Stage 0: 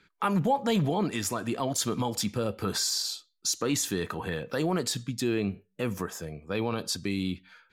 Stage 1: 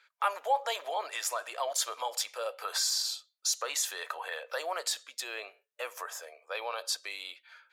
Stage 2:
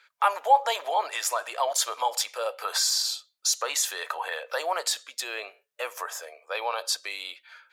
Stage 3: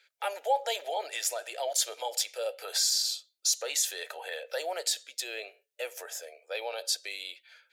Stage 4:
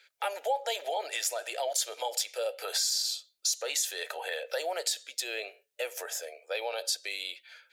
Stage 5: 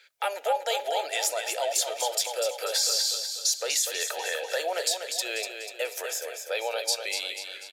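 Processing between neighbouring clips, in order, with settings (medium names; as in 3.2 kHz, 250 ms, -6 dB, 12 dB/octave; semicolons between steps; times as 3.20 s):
elliptic high-pass 560 Hz, stop band 70 dB
dynamic bell 870 Hz, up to +5 dB, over -46 dBFS, Q 3.4; trim +5 dB
static phaser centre 450 Hz, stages 4; trim -1.5 dB
compression 2:1, threshold -35 dBFS, peak gain reduction 8 dB; trim +4 dB
feedback delay 245 ms, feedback 48%, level -7 dB; trim +3.5 dB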